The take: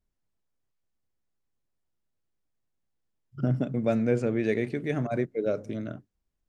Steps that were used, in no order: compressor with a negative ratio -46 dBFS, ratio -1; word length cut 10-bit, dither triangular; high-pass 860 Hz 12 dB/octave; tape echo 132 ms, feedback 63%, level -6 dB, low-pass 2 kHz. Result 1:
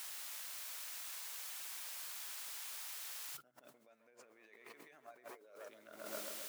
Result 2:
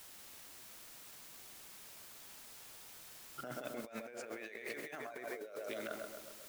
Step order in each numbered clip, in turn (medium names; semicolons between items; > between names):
tape echo > word length cut > compressor with a negative ratio > high-pass; high-pass > word length cut > tape echo > compressor with a negative ratio